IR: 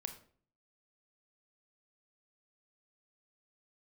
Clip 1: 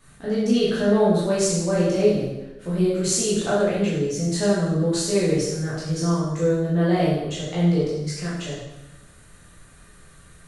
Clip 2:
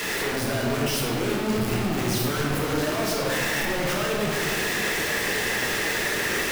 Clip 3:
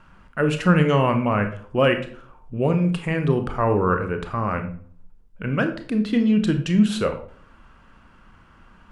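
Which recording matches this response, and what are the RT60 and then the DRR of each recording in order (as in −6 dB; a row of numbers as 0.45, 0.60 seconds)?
3; 1.0, 2.0, 0.50 seconds; −9.5, −3.0, 6.5 decibels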